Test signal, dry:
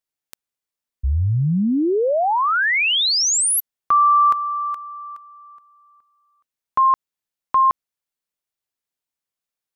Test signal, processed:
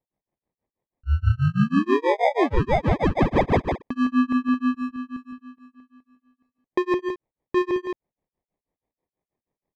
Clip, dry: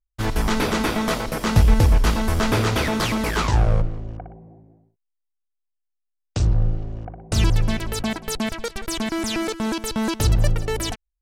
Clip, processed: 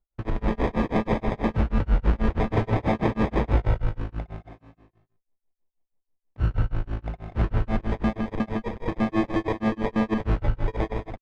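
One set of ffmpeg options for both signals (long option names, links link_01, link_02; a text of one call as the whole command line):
ffmpeg -i in.wav -filter_complex "[0:a]acrusher=samples=31:mix=1:aa=0.000001,alimiter=limit=-18dB:level=0:latency=1:release=37,lowpass=2100,asplit=2[link_01][link_02];[link_02]aecho=0:1:70|147|161|218:0.168|0.224|0.376|0.376[link_03];[link_01][link_03]amix=inputs=2:normalize=0,tremolo=f=6.2:d=0.99,volume=3.5dB" out.wav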